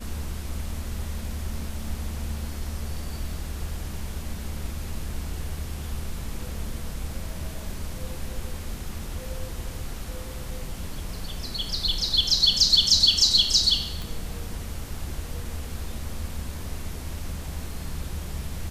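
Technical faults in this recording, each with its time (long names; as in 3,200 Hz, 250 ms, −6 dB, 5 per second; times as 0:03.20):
0:14.02: click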